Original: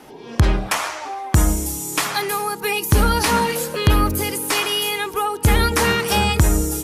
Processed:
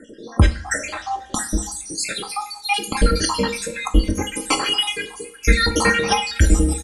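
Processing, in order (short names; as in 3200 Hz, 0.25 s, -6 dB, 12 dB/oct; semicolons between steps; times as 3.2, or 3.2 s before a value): random spectral dropouts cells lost 70%; steep low-pass 10000 Hz 48 dB/oct; comb 3.8 ms, depth 67%; two-slope reverb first 0.42 s, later 3.3 s, from -27 dB, DRR 6.5 dB; gain +2.5 dB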